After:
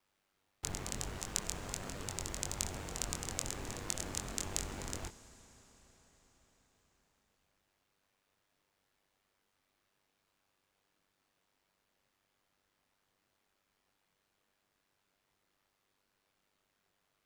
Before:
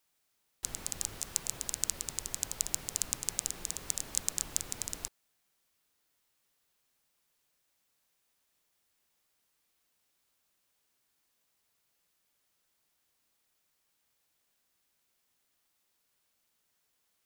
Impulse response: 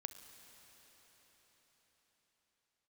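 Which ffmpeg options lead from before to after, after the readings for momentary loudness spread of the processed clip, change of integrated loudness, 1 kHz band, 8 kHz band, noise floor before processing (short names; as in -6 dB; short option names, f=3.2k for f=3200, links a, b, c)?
6 LU, -5.0 dB, +4.5 dB, -6.5 dB, -78 dBFS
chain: -filter_complex "[0:a]lowpass=f=1.8k:p=1,aeval=exprs='val(0)*sin(2*PI*49*n/s)':c=same,asplit=2[a][b];[1:a]atrim=start_sample=2205,adelay=23[c];[b][c]afir=irnorm=-1:irlink=0,volume=-2dB[d];[a][d]amix=inputs=2:normalize=0,volume=7.5dB"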